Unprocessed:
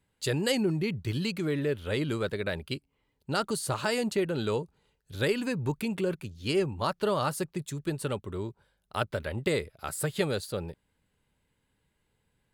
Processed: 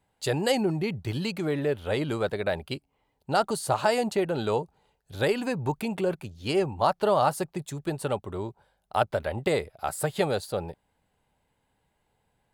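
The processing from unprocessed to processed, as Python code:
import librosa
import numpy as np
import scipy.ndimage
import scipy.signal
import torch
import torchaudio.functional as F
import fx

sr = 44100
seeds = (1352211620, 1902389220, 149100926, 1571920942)

y = fx.peak_eq(x, sr, hz=750.0, db=12.5, octaves=0.75)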